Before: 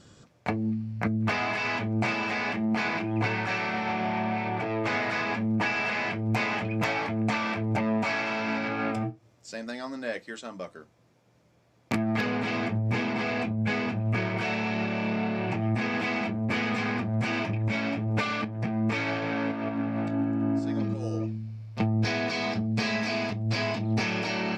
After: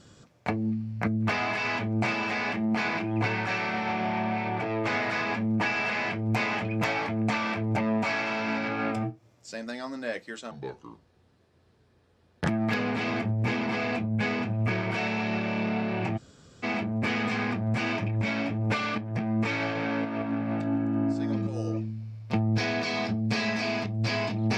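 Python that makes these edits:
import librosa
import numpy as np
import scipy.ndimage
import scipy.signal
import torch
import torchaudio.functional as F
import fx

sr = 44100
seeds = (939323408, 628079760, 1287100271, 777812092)

y = fx.edit(x, sr, fx.speed_span(start_s=10.51, length_s=1.44, speed=0.73),
    fx.room_tone_fill(start_s=15.64, length_s=0.46, crossfade_s=0.02), tone=tone)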